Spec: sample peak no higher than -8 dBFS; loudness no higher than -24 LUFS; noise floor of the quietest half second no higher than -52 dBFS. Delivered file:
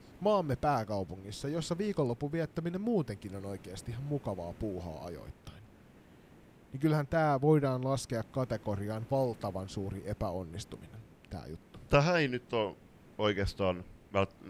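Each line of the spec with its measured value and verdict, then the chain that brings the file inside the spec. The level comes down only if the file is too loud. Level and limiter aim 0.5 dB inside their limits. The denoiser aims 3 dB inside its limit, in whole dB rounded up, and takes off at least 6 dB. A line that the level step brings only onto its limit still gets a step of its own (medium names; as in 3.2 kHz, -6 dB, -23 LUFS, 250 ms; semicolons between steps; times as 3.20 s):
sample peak -9.5 dBFS: pass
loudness -33.5 LUFS: pass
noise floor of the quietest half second -58 dBFS: pass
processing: none needed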